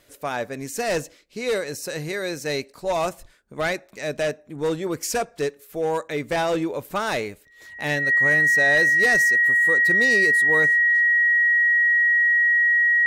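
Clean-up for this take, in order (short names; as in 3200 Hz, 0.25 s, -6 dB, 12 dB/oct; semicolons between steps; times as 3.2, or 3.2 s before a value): notch 1900 Hz, Q 30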